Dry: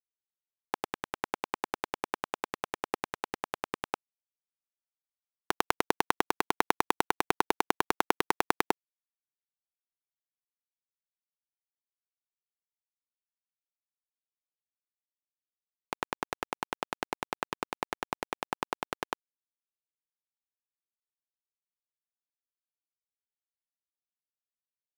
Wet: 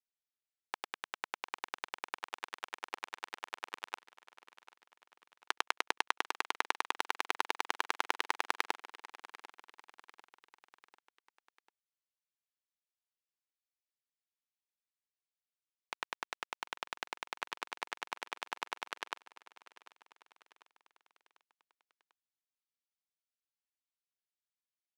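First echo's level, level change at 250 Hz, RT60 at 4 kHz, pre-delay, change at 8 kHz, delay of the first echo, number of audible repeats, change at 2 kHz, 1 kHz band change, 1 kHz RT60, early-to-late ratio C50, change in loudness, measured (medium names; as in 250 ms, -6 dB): -17.0 dB, -17.5 dB, no reverb, no reverb, -5.5 dB, 745 ms, 3, -3.0 dB, -7.5 dB, no reverb, no reverb, -6.0 dB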